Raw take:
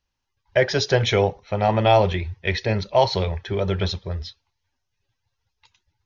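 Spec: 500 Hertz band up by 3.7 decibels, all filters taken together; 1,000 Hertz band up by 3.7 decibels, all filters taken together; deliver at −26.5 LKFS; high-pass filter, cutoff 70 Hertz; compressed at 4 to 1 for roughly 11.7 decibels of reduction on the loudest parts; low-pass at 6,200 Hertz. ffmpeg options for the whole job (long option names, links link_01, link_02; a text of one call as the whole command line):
ffmpeg -i in.wav -af "highpass=70,lowpass=6200,equalizer=frequency=500:width_type=o:gain=3.5,equalizer=frequency=1000:width_type=o:gain=3.5,acompressor=threshold=-23dB:ratio=4,volume=1.5dB" out.wav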